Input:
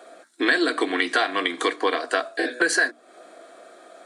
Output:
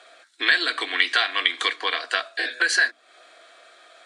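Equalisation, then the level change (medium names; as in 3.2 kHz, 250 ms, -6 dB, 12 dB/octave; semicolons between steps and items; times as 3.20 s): band-pass filter 3.1 kHz, Q 1.1; +6.5 dB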